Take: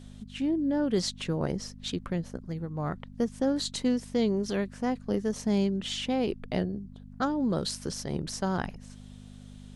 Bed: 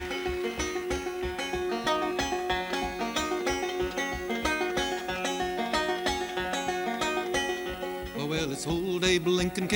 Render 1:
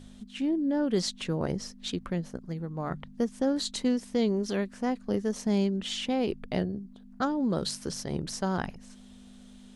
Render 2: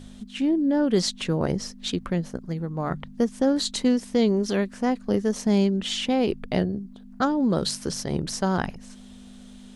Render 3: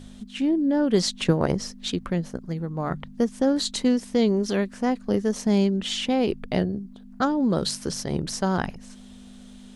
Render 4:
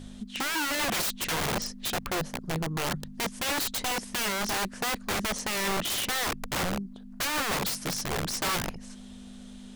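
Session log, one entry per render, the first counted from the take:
de-hum 50 Hz, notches 3
gain +5.5 dB
0.92–1.79 transient shaper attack +8 dB, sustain +1 dB
wrapped overs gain 24 dB

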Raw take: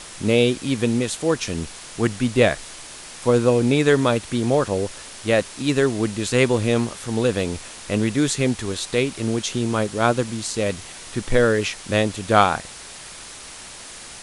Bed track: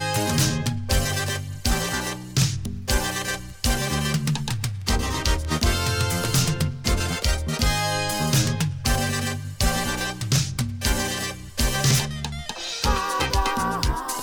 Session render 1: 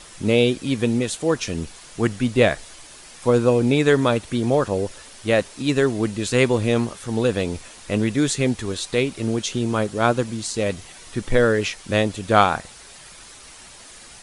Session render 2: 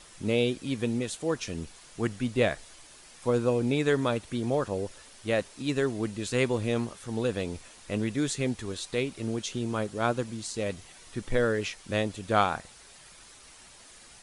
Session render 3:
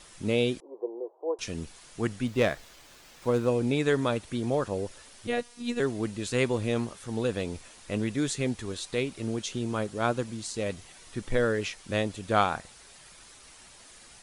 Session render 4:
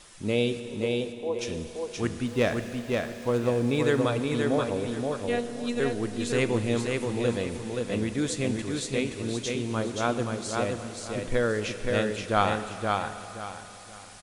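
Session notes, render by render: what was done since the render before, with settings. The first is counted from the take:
denoiser 7 dB, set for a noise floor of -39 dBFS
gain -8.5 dB
0.6–1.39 Chebyshev band-pass 350–1000 Hz, order 4; 2.27–3.48 running maximum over 3 samples; 5.27–5.8 robotiser 240 Hz
on a send: feedback echo 0.525 s, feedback 28%, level -3.5 dB; on the sum: Schroeder reverb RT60 3.7 s, combs from 26 ms, DRR 10.5 dB

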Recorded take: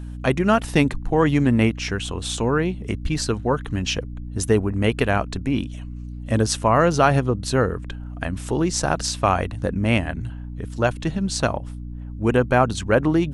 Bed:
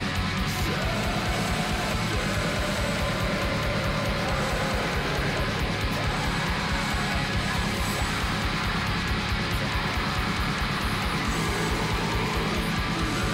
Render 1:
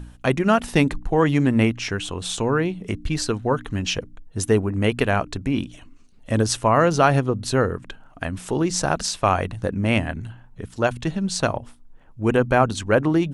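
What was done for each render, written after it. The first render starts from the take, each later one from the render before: de-hum 60 Hz, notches 5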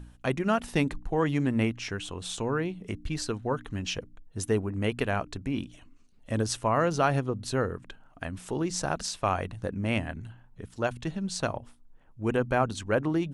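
gain -8 dB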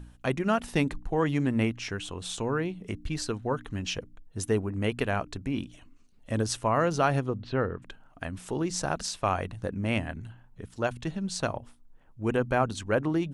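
7.35–7.82 LPF 3500 Hz 24 dB/oct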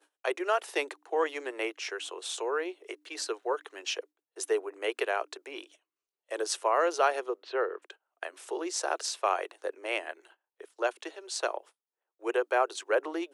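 gate -44 dBFS, range -20 dB; steep high-pass 350 Hz 72 dB/oct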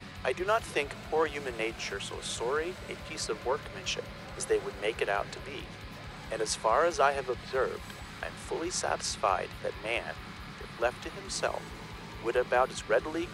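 add bed -17.5 dB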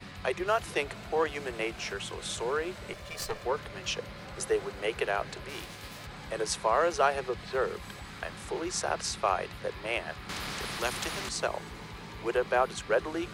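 2.93–3.45 minimum comb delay 1.7 ms; 5.48–6.05 spectral whitening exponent 0.6; 10.29–11.29 spectral compressor 2:1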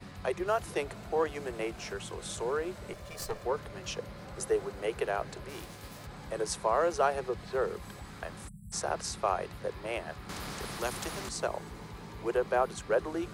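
8.48–8.72 spectral delete 220–7500 Hz; bell 2800 Hz -7.5 dB 2.1 oct

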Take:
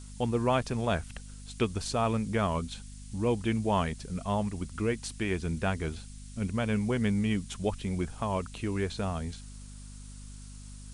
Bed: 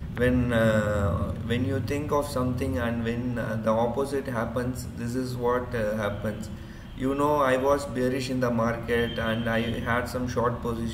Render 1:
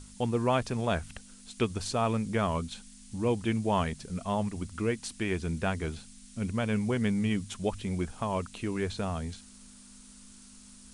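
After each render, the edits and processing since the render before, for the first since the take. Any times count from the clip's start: de-hum 50 Hz, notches 3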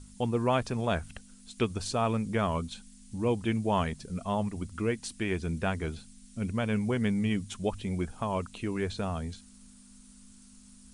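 denoiser 6 dB, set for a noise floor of -53 dBFS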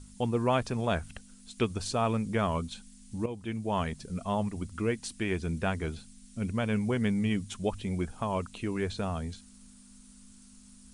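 3.26–4.01 fade in, from -12.5 dB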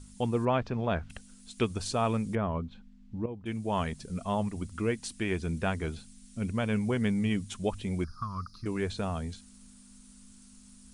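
0.45–1.1 air absorption 220 m; 2.35–3.46 tape spacing loss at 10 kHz 41 dB; 8.04–8.66 EQ curve 130 Hz 0 dB, 300 Hz -13 dB, 560 Hz -27 dB, 840 Hz -23 dB, 1200 Hz +8 dB, 2000 Hz -18 dB, 3000 Hz -28 dB, 4900 Hz +12 dB, 7900 Hz -24 dB, 12000 Hz +2 dB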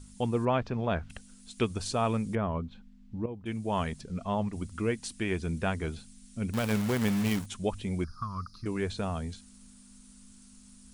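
4.01–4.53 air absorption 81 m; 6.53–7.46 companded quantiser 4-bit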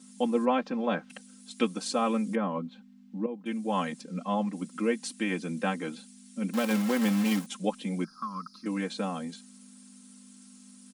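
elliptic high-pass 170 Hz, stop band 40 dB; comb 3.8 ms, depth 94%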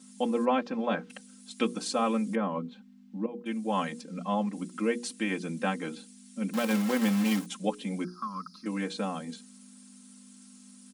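notches 60/120/180/240/300/360/420/480 Hz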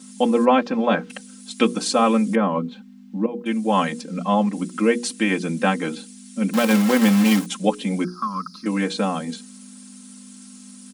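gain +10 dB

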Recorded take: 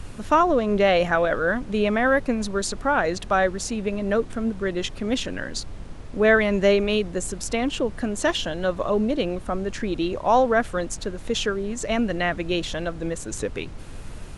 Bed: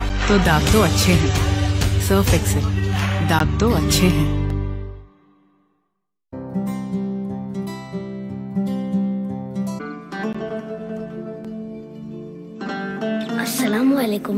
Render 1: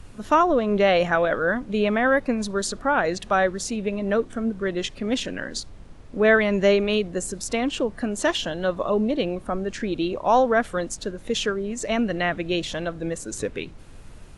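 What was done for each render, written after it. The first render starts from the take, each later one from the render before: noise print and reduce 7 dB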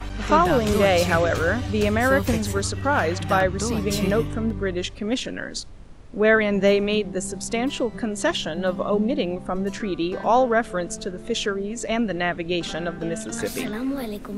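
add bed -10 dB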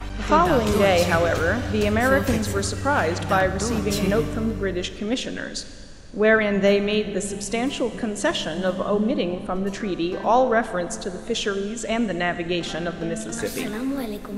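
Schroeder reverb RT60 2.5 s, combs from 29 ms, DRR 11.5 dB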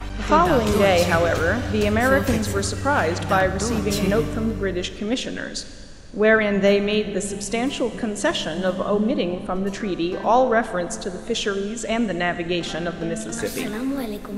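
gain +1 dB

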